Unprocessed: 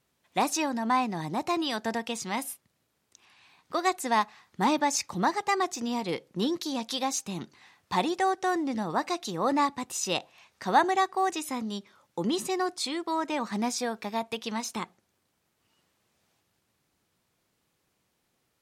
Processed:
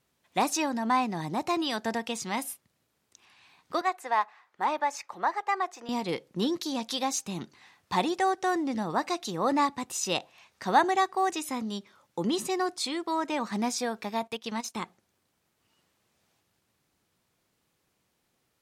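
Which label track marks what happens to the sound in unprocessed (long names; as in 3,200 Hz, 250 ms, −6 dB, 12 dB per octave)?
3.810000	5.890000	three-way crossover with the lows and the highs turned down lows −23 dB, under 460 Hz, highs −13 dB, over 2,400 Hz
14.270000	14.830000	transient designer attack −2 dB, sustain −11 dB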